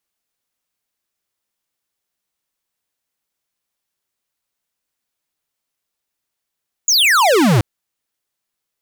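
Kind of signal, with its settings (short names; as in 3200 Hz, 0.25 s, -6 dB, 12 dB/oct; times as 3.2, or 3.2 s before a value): laser zap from 7100 Hz, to 97 Hz, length 0.73 s square, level -12 dB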